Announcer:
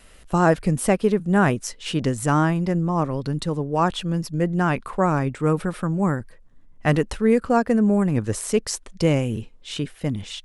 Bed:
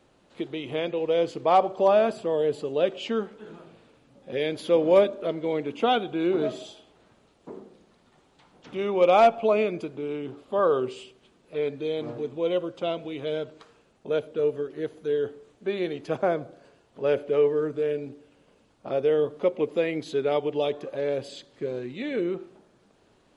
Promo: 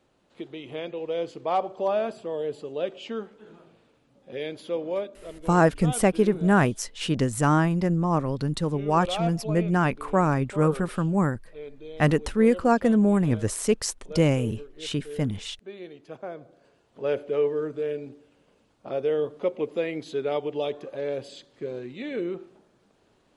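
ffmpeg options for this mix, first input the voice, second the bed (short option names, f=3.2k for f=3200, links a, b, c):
-filter_complex "[0:a]adelay=5150,volume=-1.5dB[a];[1:a]volume=4.5dB,afade=t=out:st=4.47:d=0.59:silence=0.446684,afade=t=in:st=16.33:d=0.61:silence=0.316228[b];[a][b]amix=inputs=2:normalize=0"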